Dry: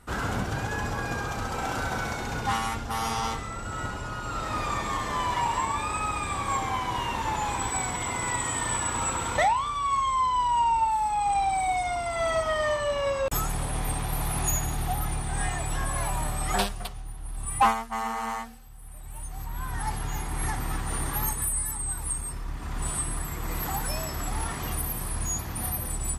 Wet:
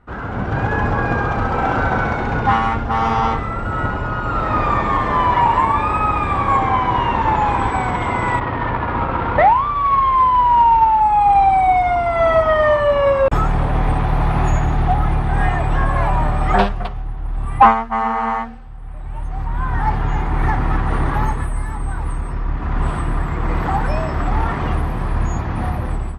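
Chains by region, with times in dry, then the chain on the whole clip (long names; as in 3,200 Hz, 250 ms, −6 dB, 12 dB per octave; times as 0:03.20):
0:08.39–0:11.01: variable-slope delta modulation 32 kbit/s + high-frequency loss of the air 220 metres
whole clip: low-pass filter 1,800 Hz 12 dB per octave; automatic gain control gain up to 11 dB; level +2 dB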